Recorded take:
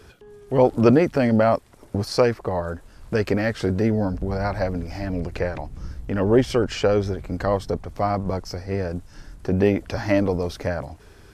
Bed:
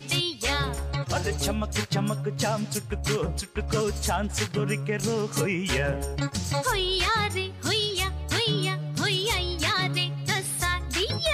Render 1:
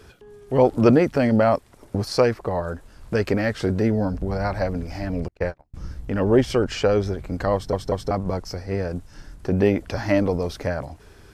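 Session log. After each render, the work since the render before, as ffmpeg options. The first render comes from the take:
-filter_complex "[0:a]asettb=1/sr,asplit=3[a][b][c];[a]atrim=end=5.284[d];[b]atrim=start=5.28:end=5.74,asetpts=PTS-STARTPTS,afade=t=in:d=0.004:c=qsin,afade=t=out:st=0.456:d=0.004:c=qsin,agate=range=-36dB:threshold=-27dB:ratio=16:release=100:detection=peak[e];[c]atrim=start=5.736[f];[d][e]acrossfade=d=0.004:c1=hsin:c2=qsin[g];[g][f]acrossfade=d=0.004:c1=qsin:c2=hsin,asplit=4[h][i][j][k];[h]atrim=end=7.732[l];[i]atrim=start=7.538:end=7.732[m];[j]atrim=start=7.538:end=7.732[n];[k]atrim=start=8.108[o];[l][m]acrossfade=d=0.004:c1=hsin:c2=hsin[p];[p][n]acrossfade=d=0.004:c1=hsin:c2=hsin[q];[q][o]acrossfade=d=0.004:c1=hsin:c2=hsin"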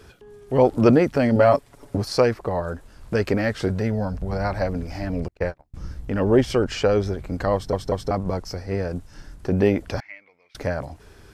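-filter_complex "[0:a]asettb=1/sr,asplit=3[a][b][c];[a]atrim=end=1.354[d];[b]atrim=start=1.35:end=1.97,asetpts=PTS-STARTPTS,afade=t=in:d=0.004:c=qsin,afade=t=out:st=0.616:d=0.004:c=qsin,aecho=1:1:7.1:0.65,atrim=end_sample=27342[e];[c]atrim=start=1.966[f];[d][e]acrossfade=d=0.004:c1=hsin:c2=qsin[g];[g][f]acrossfade=d=0.004:c1=qsin:c2=hsin,asettb=1/sr,asplit=3[h][i][j];[h]atrim=end=3.684[k];[i]atrim=start=3.68:end=4.33,asetpts=PTS-STARTPTS,afade=t=in:d=0.004:c=qsin,afade=t=out:st=0.646:d=0.004:c=qsin,equalizer=f=310:t=o:w=0.69:g=-11[l];[j]atrim=start=4.326[m];[k][l]acrossfade=d=0.004:c1=hsin:c2=qsin[n];[n][m]acrossfade=d=0.004:c1=qsin:c2=hsin,asettb=1/sr,asplit=3[o][p][q];[o]atrim=end=10.004[r];[p]atrim=start=10:end=10.55,asetpts=PTS-STARTPTS,afade=t=in:d=0.004:c=qsin,afade=t=out:st=0.546:d=0.004:c=qsin,bandpass=f=2.2k:t=q:w=16[s];[q]atrim=start=10.546[t];[r][s]acrossfade=d=0.004:c1=hsin:c2=qsin[u];[u][t]acrossfade=d=0.004:c1=qsin:c2=hsin"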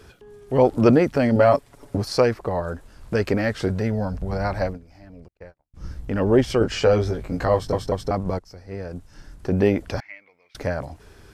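-filter_complex "[0:a]asettb=1/sr,asplit=3[a][b][c];[a]atrim=end=6.594[d];[b]atrim=start=6.59:end=7.87,asetpts=PTS-STARTPTS,afade=t=in:d=0.004:c=qsin,afade=t=out:st=1.276:d=0.004:c=qsin,asplit=2[e][f];[f]adelay=18,volume=-3.5dB[g];[e][g]amix=inputs=2:normalize=0,atrim=end_sample=56448[h];[c]atrim=start=7.866[i];[d][h]acrossfade=d=0.004:c1=hsin:c2=qsin[j];[j][i]acrossfade=d=0.004:c1=qsin:c2=hsin,asplit=4[k][l][m][n];[k]atrim=end=4.79,asetpts=PTS-STARTPTS,afade=t=out:st=4.66:d=0.13:silence=0.133352[o];[l]atrim=start=4.79:end=5.73,asetpts=PTS-STARTPTS,volume=-17.5dB[p];[m]atrim=start=5.73:end=8.39,asetpts=PTS-STARTPTS,afade=t=in:d=0.13:silence=0.133352,afade=t=out:st=2.656:d=0.004:c=hsin:silence=0.158489[q];[n]atrim=start=8.39,asetpts=PTS-STARTPTS,afade=t=in:d=1.15:silence=0.158489[r];[o][p][q][r]concat=n=4:v=0:a=1"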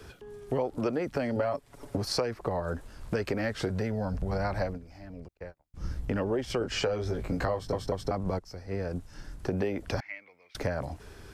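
-filter_complex "[0:a]acrossover=split=320|480|1600[a][b][c][d];[a]alimiter=limit=-21dB:level=0:latency=1[e];[e][b][c][d]amix=inputs=4:normalize=0,acompressor=threshold=-26dB:ratio=10"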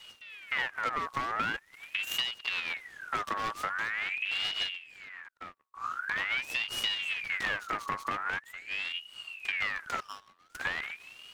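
-af "aeval=exprs='abs(val(0))':c=same,aeval=exprs='val(0)*sin(2*PI*2000*n/s+2000*0.45/0.44*sin(2*PI*0.44*n/s))':c=same"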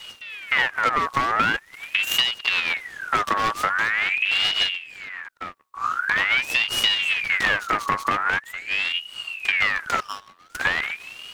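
-af "volume=11dB"

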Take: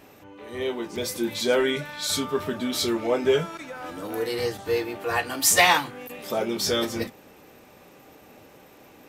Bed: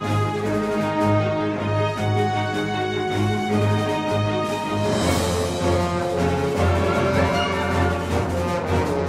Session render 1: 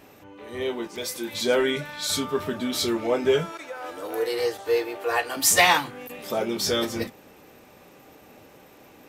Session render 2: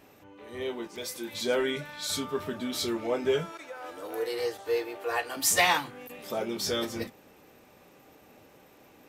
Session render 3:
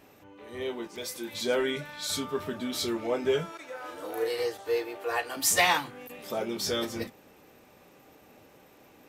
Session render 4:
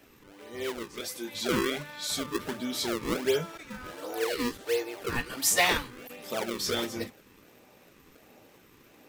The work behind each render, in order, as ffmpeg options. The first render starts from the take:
-filter_complex "[0:a]asettb=1/sr,asplit=3[a][b][c];[a]atrim=end=0.874[d];[b]atrim=start=0.87:end=1.34,asetpts=PTS-STARTPTS,afade=t=in:d=0.004:c=qsin,afade=t=out:st=0.466:d=0.004:c=qsin,lowshelf=f=360:g=-10.5[e];[c]atrim=start=1.336[f];[d][e]acrossfade=d=0.004:c1=hsin:c2=qsin[g];[g][f]acrossfade=d=0.004:c1=qsin:c2=hsin,asettb=1/sr,asplit=3[h][i][j];[h]atrim=end=3.524[k];[i]atrim=start=3.52:end=5.37,asetpts=PTS-STARTPTS,afade=t=in:d=0.004:c=qsin,afade=t=out:st=1.846:d=0.004:c=qsin,lowshelf=f=300:t=q:w=1.5:g=-10.5[l];[j]atrim=start=5.366[m];[k][l]acrossfade=d=0.004:c1=hsin:c2=qsin[n];[n][m]acrossfade=d=0.004:c1=qsin:c2=hsin"
-af "volume=-5.5dB"
-filter_complex "[0:a]asettb=1/sr,asplit=3[a][b][c];[a]atrim=end=3.654[d];[b]atrim=start=3.65:end=4.43,asetpts=PTS-STARTPTS,afade=t=in:d=0.004:c=qsin,afade=t=out:st=0.776:d=0.004:c=qsin,asplit=2[e][f];[f]adelay=35,volume=-3.5dB[g];[e][g]amix=inputs=2:normalize=0,atrim=end_sample=34398[h];[c]atrim=start=4.426[i];[d][h]acrossfade=d=0.004:c1=hsin:c2=qsin[j];[j][i]acrossfade=d=0.004:c1=qsin:c2=hsin"
-filter_complex "[0:a]acrossover=split=140|1000[a][b][c];[a]flanger=delay=16:depth=5:speed=0.37[d];[b]acrusher=samples=34:mix=1:aa=0.000001:lfo=1:lforange=54.4:lforate=1.4[e];[d][e][c]amix=inputs=3:normalize=0"

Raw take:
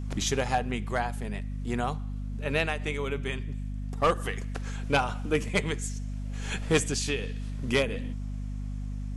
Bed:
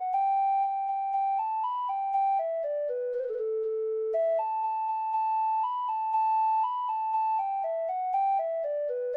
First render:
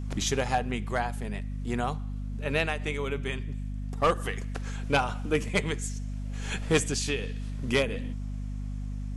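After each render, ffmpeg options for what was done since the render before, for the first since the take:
-af anull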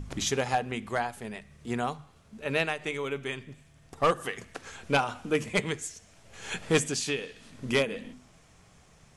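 -af "bandreject=f=50:t=h:w=6,bandreject=f=100:t=h:w=6,bandreject=f=150:t=h:w=6,bandreject=f=200:t=h:w=6,bandreject=f=250:t=h:w=6"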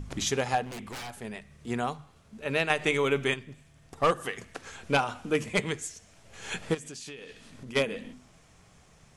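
-filter_complex "[0:a]asettb=1/sr,asplit=3[a][b][c];[a]atrim=end=0.634[d];[b]atrim=start=0.63:end=1.2,asetpts=PTS-STARTPTS,afade=t=in:d=0.004:c=qsin,afade=t=out:st=0.566:d=0.004:c=qsin,aeval=exprs='0.02*(abs(mod(val(0)/0.02+3,4)-2)-1)':c=same[e];[c]atrim=start=1.196[f];[d][e]acrossfade=d=0.004:c1=hsin:c2=qsin[g];[g][f]acrossfade=d=0.004:c1=qsin:c2=hsin,asplit=3[h][i][j];[h]afade=t=out:st=6.73:d=0.02[k];[i]acompressor=threshold=-39dB:ratio=8:attack=3.2:release=140:knee=1:detection=peak,afade=t=in:st=6.73:d=0.02,afade=t=out:st=7.75:d=0.02[l];[j]afade=t=in:st=7.75:d=0.02[m];[k][l][m]amix=inputs=3:normalize=0,asplit=3[n][o][p];[n]atrim=end=2.702[q];[o]atrim=start=2.698:end=3.342,asetpts=PTS-STARTPTS,volume=7dB[r];[p]atrim=start=3.338[s];[q][r]acrossfade=d=0.004:c1=hsin:c2=hsin[t];[t][s]acrossfade=d=0.004:c1=hsin:c2=hsin"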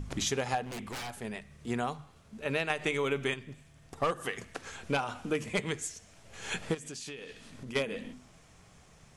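-af "acompressor=threshold=-28dB:ratio=3"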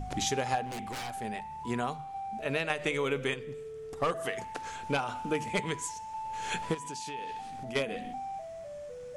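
-filter_complex "[1:a]volume=-12.5dB[a];[0:a][a]amix=inputs=2:normalize=0"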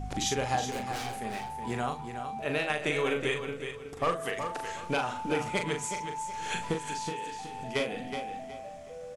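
-filter_complex "[0:a]asplit=2[a][b];[b]adelay=40,volume=-5.5dB[c];[a][c]amix=inputs=2:normalize=0,aecho=1:1:370|740|1110:0.398|0.111|0.0312"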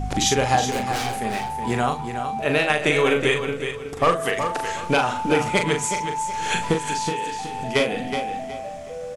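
-af "volume=10dB"

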